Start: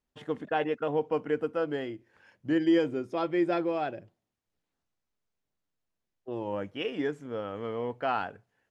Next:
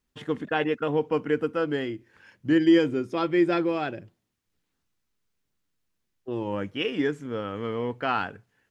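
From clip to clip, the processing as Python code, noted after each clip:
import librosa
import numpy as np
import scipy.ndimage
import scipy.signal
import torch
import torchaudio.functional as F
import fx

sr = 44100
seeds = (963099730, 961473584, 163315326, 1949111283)

y = fx.peak_eq(x, sr, hz=670.0, db=-8.0, octaves=1.0)
y = y * librosa.db_to_amplitude(7.0)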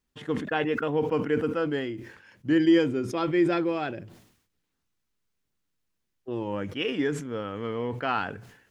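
y = fx.sustainer(x, sr, db_per_s=78.0)
y = y * librosa.db_to_amplitude(-1.5)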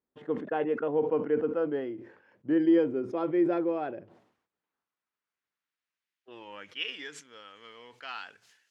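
y = fx.filter_sweep_bandpass(x, sr, from_hz=520.0, to_hz=5200.0, start_s=3.75, end_s=7.47, q=1.0)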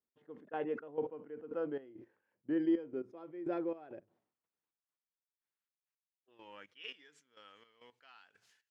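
y = fx.step_gate(x, sr, bpm=169, pattern='x.....xxx..', floor_db=-12.0, edge_ms=4.5)
y = y * librosa.db_to_amplitude(-8.0)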